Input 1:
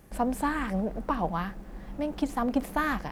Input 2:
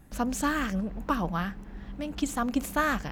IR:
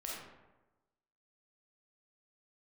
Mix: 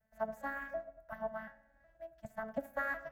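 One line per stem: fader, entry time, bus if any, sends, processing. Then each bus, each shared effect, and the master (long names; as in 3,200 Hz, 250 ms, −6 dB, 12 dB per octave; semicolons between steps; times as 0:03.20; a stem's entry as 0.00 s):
+1.5 dB, 0.00 s, send −6.5 dB, vocoder with an arpeggio as carrier major triad, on A3, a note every 367 ms; square-wave tremolo 0.89 Hz, depth 65%, duty 75%
−19.5 dB, 0.00 s, polarity flipped, no send, no processing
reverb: on, RT60 1.1 s, pre-delay 5 ms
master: drawn EQ curve 140 Hz 0 dB, 230 Hz −24 dB, 410 Hz −24 dB, 620 Hz +1 dB, 1,000 Hz −13 dB, 1,700 Hz +4 dB, 2,600 Hz −10 dB, 3,900 Hz −10 dB, 9,700 Hz −4 dB, 14,000 Hz +9 dB; expander for the loud parts 1.5 to 1, over −55 dBFS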